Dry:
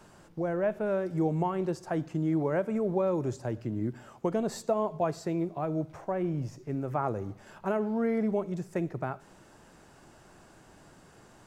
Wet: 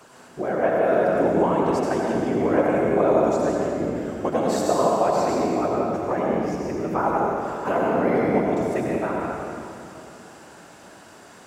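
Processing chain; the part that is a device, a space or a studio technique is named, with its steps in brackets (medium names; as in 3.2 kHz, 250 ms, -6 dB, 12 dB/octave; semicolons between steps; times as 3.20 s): whispering ghost (whisper effect; high-pass 440 Hz 6 dB/octave; reverberation RT60 2.7 s, pre-delay 78 ms, DRR -3 dB); trim +7.5 dB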